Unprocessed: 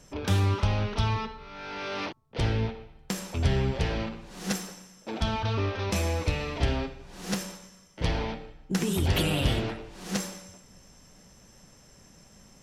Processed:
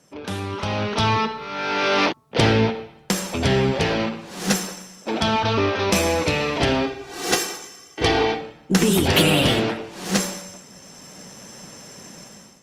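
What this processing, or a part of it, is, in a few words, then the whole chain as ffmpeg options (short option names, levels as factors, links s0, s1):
video call: -filter_complex "[0:a]asettb=1/sr,asplit=3[s0][s1][s2];[s0]atrim=end=6.864[s3];[s1]atrim=start=6.86:end=8.41,asetpts=PTS-STARTPTS,afade=t=in:d=0.004:c=qsin,afade=t=out:st=1.546:d=0.004:c=qsin,aecho=1:1:2.6:0.87,atrim=end_sample=68355[s4];[s2]atrim=start=8.406[s5];[s3][s4]acrossfade=d=0.004:c1=hsin:c2=qsin[s6];[s6][s5]acrossfade=d=0.004:c1=qsin:c2=hsin,highpass=170,dynaudnorm=f=510:g=3:m=5.96" -ar 48000 -c:a libopus -b:a 32k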